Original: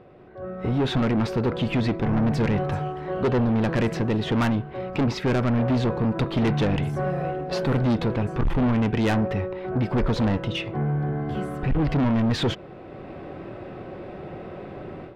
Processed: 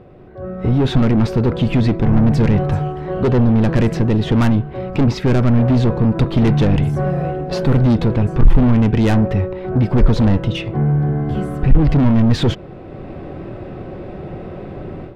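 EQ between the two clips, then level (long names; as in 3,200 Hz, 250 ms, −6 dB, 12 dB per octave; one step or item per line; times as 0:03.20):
spectral tilt −2.5 dB per octave
high-shelf EQ 3,900 Hz +12 dB
+2.5 dB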